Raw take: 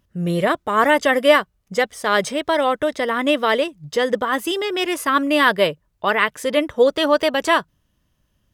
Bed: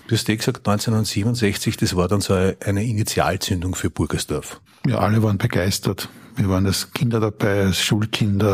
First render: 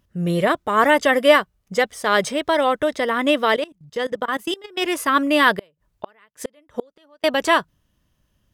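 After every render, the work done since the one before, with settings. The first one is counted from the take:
0:03.56–0:04.82: output level in coarse steps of 22 dB
0:05.57–0:07.24: gate with flip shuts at −13 dBFS, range −36 dB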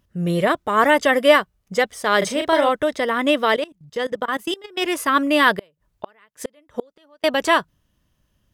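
0:02.18–0:02.69: double-tracking delay 37 ms −5 dB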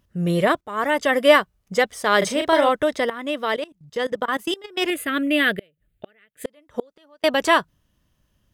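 0:00.61–0:01.33: fade in, from −14.5 dB
0:03.10–0:04.04: fade in, from −13.5 dB
0:04.90–0:06.45: phaser with its sweep stopped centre 2,400 Hz, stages 4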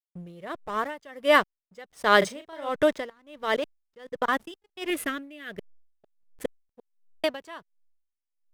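slack as between gear wheels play −33 dBFS
tremolo with a sine in dB 1.4 Hz, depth 26 dB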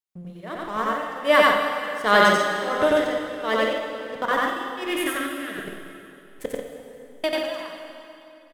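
loudspeakers that aren't time-aligned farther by 31 metres 0 dB, 48 metres −5 dB
dense smooth reverb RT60 2.7 s, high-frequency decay 0.9×, DRR 3 dB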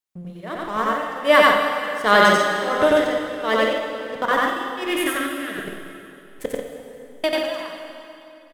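level +3 dB
brickwall limiter −3 dBFS, peak gain reduction 2 dB

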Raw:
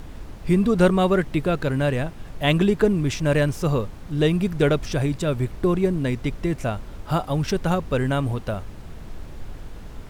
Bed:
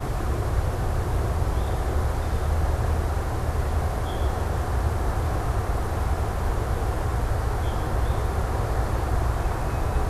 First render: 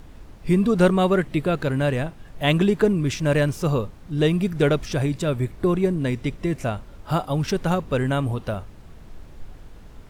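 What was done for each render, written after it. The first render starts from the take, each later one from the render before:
noise reduction from a noise print 6 dB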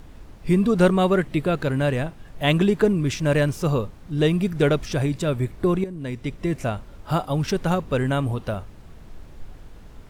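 0:05.84–0:06.49: fade in, from −14.5 dB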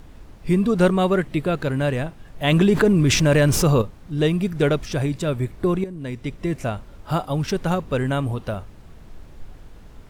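0:02.52–0:03.82: envelope flattener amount 70%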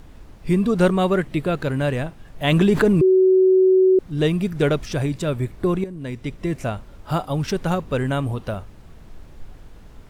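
0:03.01–0:03.99: beep over 375 Hz −11 dBFS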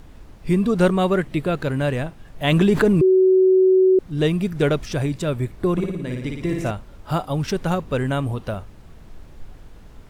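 0:05.72–0:06.71: flutter between parallel walls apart 9.7 metres, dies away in 0.9 s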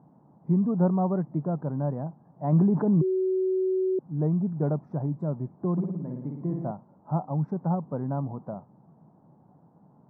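elliptic band-pass filter 150–890 Hz, stop band 50 dB
parametric band 420 Hz −12 dB 1.3 octaves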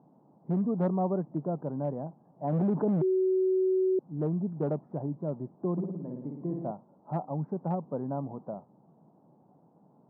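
hard clipping −19 dBFS, distortion −18 dB
resonant band-pass 460 Hz, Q 0.71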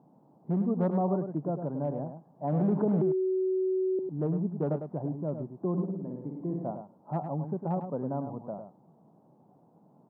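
single-tap delay 103 ms −8 dB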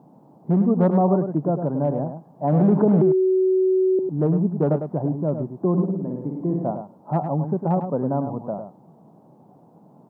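level +9.5 dB

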